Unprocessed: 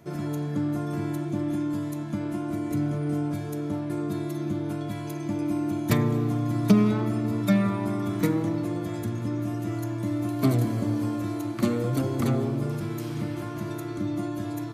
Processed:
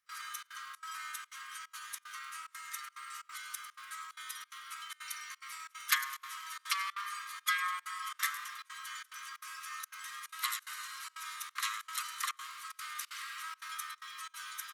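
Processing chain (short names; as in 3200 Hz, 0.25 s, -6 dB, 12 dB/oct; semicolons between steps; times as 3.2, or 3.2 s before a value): steep high-pass 1200 Hz 96 dB/oct; thin delay 0.101 s, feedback 54%, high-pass 5400 Hz, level -12.5 dB; requantised 12-bit, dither triangular; step gate ".xxxx.xxx.xxxxx" 183 bpm -24 dB; pitch shift -1.5 st; gain +4 dB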